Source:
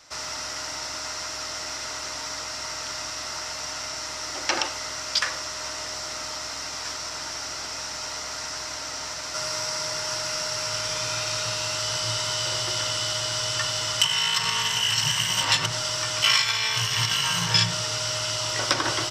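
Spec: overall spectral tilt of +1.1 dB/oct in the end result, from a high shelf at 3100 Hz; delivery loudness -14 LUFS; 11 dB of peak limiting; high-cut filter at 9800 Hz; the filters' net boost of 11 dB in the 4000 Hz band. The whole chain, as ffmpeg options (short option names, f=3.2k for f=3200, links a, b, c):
-af "lowpass=9.8k,highshelf=f=3.1k:g=8.5,equalizer=f=4k:t=o:g=8.5,volume=2.5dB,alimiter=limit=-2dB:level=0:latency=1"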